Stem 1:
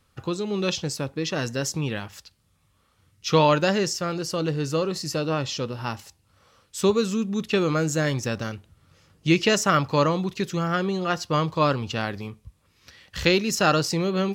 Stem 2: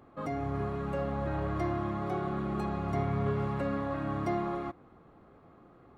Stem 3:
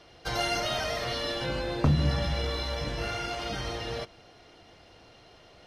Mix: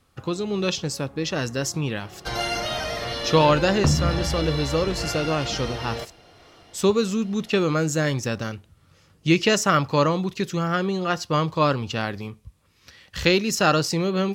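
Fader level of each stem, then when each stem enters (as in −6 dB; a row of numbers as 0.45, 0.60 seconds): +1.0, −15.0, +2.5 decibels; 0.00, 0.00, 2.00 seconds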